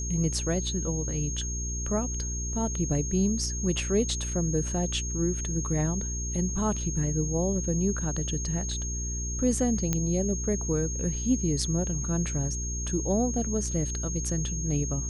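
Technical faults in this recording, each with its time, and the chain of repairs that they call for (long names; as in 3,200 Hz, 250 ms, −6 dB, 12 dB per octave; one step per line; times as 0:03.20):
mains hum 60 Hz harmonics 7 −33 dBFS
whistle 6,500 Hz −34 dBFS
0:09.93: click −12 dBFS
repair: click removal
notch filter 6,500 Hz, Q 30
hum removal 60 Hz, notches 7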